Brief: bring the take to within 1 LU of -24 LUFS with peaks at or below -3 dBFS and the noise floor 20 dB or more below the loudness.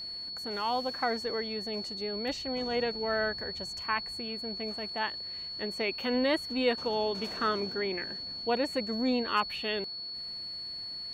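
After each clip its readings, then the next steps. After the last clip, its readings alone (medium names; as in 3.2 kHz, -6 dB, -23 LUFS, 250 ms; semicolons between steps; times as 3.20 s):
steady tone 4.4 kHz; tone level -37 dBFS; loudness -32.0 LUFS; peak level -16.0 dBFS; loudness target -24.0 LUFS
-> band-stop 4.4 kHz, Q 30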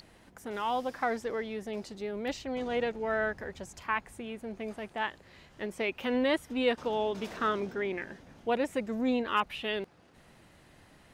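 steady tone not found; loudness -33.0 LUFS; peak level -16.5 dBFS; loudness target -24.0 LUFS
-> trim +9 dB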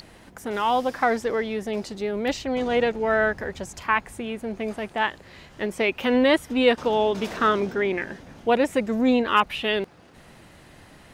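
loudness -24.0 LUFS; peak level -7.5 dBFS; noise floor -50 dBFS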